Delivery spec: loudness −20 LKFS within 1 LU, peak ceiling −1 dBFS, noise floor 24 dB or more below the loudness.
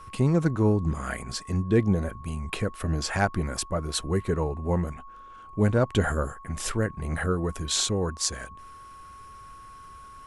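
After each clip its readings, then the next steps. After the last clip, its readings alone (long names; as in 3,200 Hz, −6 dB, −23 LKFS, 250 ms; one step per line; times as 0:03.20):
interfering tone 1,100 Hz; level of the tone −44 dBFS; integrated loudness −27.0 LKFS; sample peak −7.0 dBFS; target loudness −20.0 LKFS
→ notch filter 1,100 Hz, Q 30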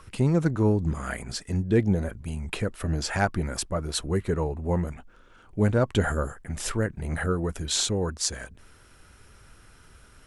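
interfering tone none found; integrated loudness −27.0 LKFS; sample peak −7.0 dBFS; target loudness −20.0 LKFS
→ level +7 dB
brickwall limiter −1 dBFS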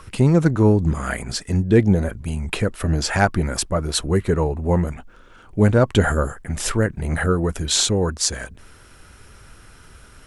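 integrated loudness −20.0 LKFS; sample peak −1.0 dBFS; background noise floor −47 dBFS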